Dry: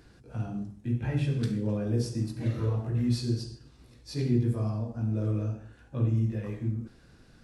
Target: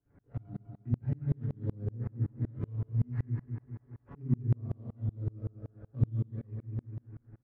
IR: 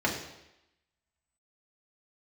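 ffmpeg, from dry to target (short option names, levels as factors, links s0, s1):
-filter_complex "[0:a]acrusher=samples=10:mix=1:aa=0.000001:lfo=1:lforange=6:lforate=0.85,equalizer=f=89:t=o:w=0.37:g=10,aecho=1:1:7.1:0.53,aecho=1:1:201|402|603|804|1005|1206:0.531|0.244|0.112|0.0517|0.0238|0.0109,adynamicsmooth=sensitivity=3.5:basefreq=1200,highshelf=f=2600:t=q:w=1.5:g=-8.5,acrossover=split=330[s0][s1];[s1]acompressor=threshold=0.00282:ratio=3[s2];[s0][s2]amix=inputs=2:normalize=0,aeval=exprs='val(0)*pow(10,-33*if(lt(mod(-5.3*n/s,1),2*abs(-5.3)/1000),1-mod(-5.3*n/s,1)/(2*abs(-5.3)/1000),(mod(-5.3*n/s,1)-2*abs(-5.3)/1000)/(1-2*abs(-5.3)/1000))/20)':c=same"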